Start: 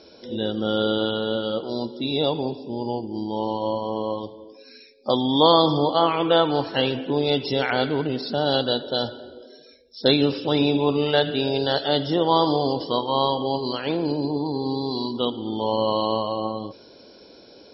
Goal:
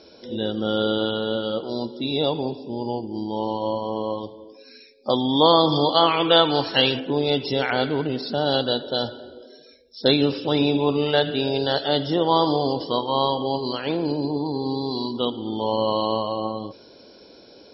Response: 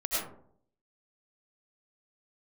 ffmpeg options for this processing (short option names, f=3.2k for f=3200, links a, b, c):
-filter_complex "[0:a]asettb=1/sr,asplit=3[a][b][c];[a]atrim=end=5.724[d];[b]atrim=start=5.72:end=7,asetpts=PTS-STARTPTS,afade=t=in:d=0.004:c=qsin,afade=t=out:st=1.276:d=0.004:c=qsin,highshelf=f=2.3k:g=11[e];[c]atrim=start=6.996[f];[d][e]acrossfade=d=0.004:c1=hsin:c2=qsin[g];[g][f]acrossfade=d=0.004:c1=qsin:c2=hsin"